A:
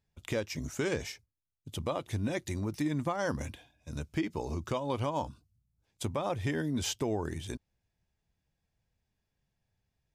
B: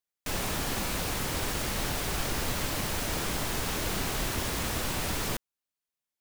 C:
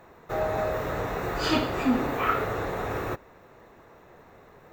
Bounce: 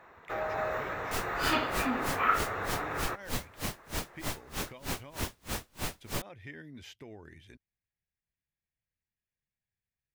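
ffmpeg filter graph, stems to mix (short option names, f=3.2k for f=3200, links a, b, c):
-filter_complex "[0:a]equalizer=f=1k:t=o:w=1:g=-5,equalizer=f=2k:t=o:w=1:g=12,equalizer=f=8k:t=o:w=1:g=-9,volume=-16dB,asplit=2[a][b];[1:a]aeval=exprs='val(0)*pow(10,-39*(0.5-0.5*cos(2*PI*3.2*n/s))/20)':c=same,adelay=850,volume=-0.5dB[c];[2:a]equalizer=f=1.6k:w=0.49:g=12,volume=-10.5dB[d];[b]apad=whole_len=208373[e];[d][e]sidechaincompress=threshold=-41dB:ratio=8:attack=11:release=1180[f];[a][c][f]amix=inputs=3:normalize=0"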